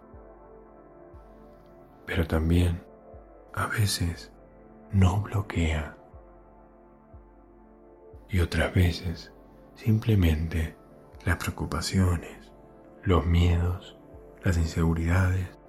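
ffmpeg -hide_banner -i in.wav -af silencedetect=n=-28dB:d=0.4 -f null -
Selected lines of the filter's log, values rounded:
silence_start: 0.00
silence_end: 2.09 | silence_duration: 2.09
silence_start: 2.75
silence_end: 3.54 | silence_duration: 0.79
silence_start: 4.13
silence_end: 4.94 | silence_duration: 0.81
silence_start: 5.84
silence_end: 8.33 | silence_duration: 2.49
silence_start: 9.13
silence_end: 9.87 | silence_duration: 0.74
silence_start: 10.66
silence_end: 11.27 | silence_duration: 0.60
silence_start: 12.23
silence_end: 13.06 | silence_duration: 0.83
silence_start: 13.75
silence_end: 14.46 | silence_duration: 0.71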